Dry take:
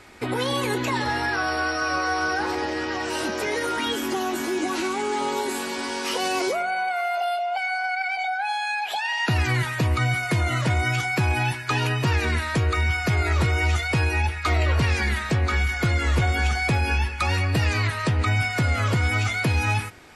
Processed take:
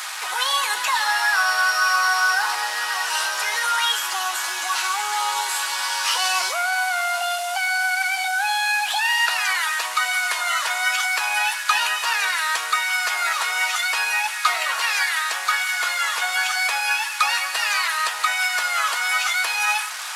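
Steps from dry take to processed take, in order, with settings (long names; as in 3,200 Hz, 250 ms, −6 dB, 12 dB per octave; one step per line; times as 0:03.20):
linear delta modulator 64 kbit/s, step −30 dBFS
high-pass filter 930 Hz 24 dB per octave
parametric band 2,200 Hz −5 dB 0.38 octaves
level +8 dB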